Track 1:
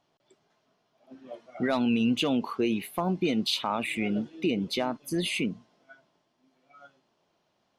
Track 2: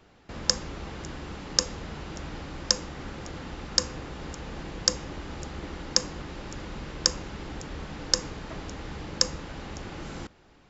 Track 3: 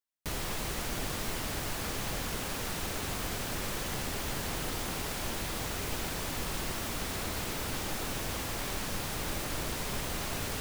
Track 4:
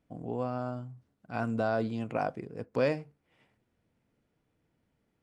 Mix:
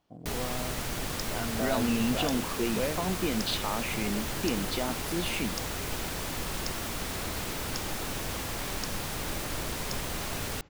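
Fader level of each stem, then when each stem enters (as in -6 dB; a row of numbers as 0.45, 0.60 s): -4.0, -17.5, +1.0, -4.0 dB; 0.00, 0.70, 0.00, 0.00 s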